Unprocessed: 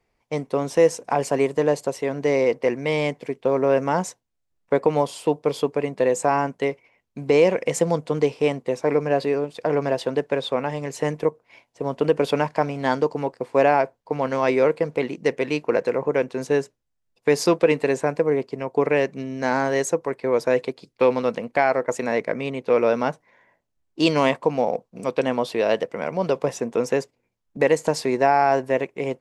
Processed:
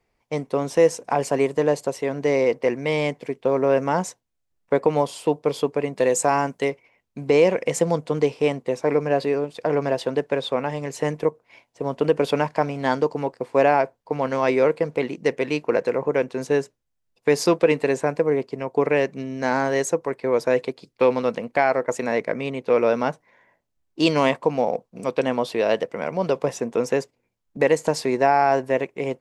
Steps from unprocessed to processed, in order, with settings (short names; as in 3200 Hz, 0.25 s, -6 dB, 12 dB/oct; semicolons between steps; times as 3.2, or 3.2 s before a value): 5.95–6.69 high shelf 3600 Hz -> 5100 Hz +9 dB